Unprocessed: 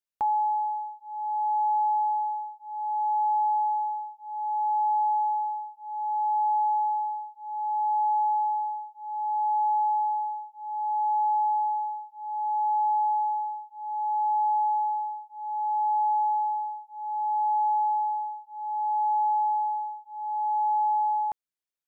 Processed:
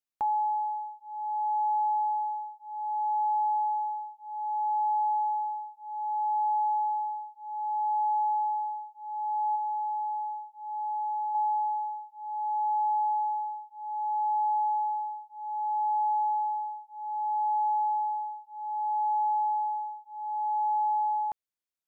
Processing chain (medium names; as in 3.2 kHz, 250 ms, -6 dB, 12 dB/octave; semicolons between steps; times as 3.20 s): 9.55–11.35 s: compression, threshold -27 dBFS, peak gain reduction 4.5 dB; trim -2.5 dB